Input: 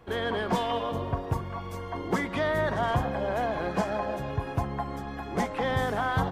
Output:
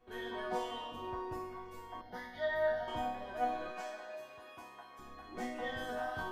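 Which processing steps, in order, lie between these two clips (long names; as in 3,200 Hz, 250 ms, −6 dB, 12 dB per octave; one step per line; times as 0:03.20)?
0:03.71–0:04.99: high-pass filter 750 Hz 6 dB per octave
resonators tuned to a chord B3 major, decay 0.73 s
0:02.01–0:02.88: phaser with its sweep stopped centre 1,700 Hz, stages 8
level +12.5 dB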